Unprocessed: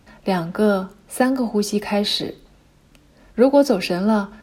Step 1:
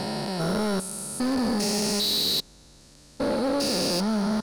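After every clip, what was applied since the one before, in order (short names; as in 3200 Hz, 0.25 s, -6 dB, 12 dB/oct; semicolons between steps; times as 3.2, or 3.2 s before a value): stepped spectrum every 0.4 s; band shelf 6500 Hz +13 dB; overloaded stage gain 22 dB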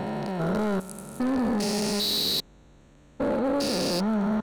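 Wiener smoothing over 9 samples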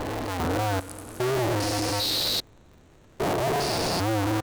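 cycle switcher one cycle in 2, inverted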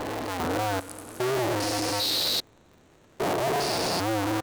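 low shelf 110 Hz -11.5 dB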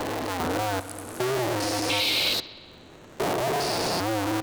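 painted sound noise, 1.89–2.34, 2100–4200 Hz -27 dBFS; analogue delay 62 ms, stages 2048, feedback 71%, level -19 dB; three-band squash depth 40%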